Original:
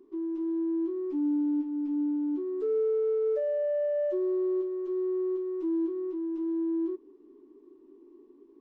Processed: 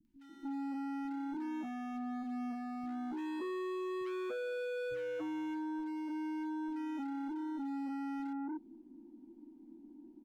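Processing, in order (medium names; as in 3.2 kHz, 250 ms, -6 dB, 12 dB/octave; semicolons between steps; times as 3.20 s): bass shelf 230 Hz +10 dB; in parallel at -7.5 dB: saturation -34 dBFS, distortion -9 dB; on the sum: tape speed -16%; overload inside the chain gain 31.5 dB; three bands offset in time lows, highs, mids 50/290 ms, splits 170/1600 Hz; trim -6 dB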